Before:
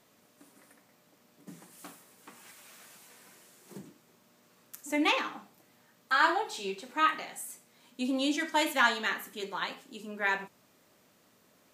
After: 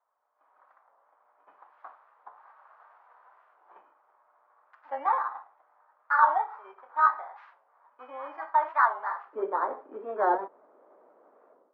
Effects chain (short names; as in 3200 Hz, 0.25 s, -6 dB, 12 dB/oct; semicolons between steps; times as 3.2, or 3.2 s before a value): FFT order left unsorted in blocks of 16 samples; LPF 1200 Hz 24 dB/oct; AGC gain up to 14.5 dB; HPF 880 Hz 24 dB/oct, from 9.33 s 400 Hz; record warp 45 rpm, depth 160 cents; gain -2 dB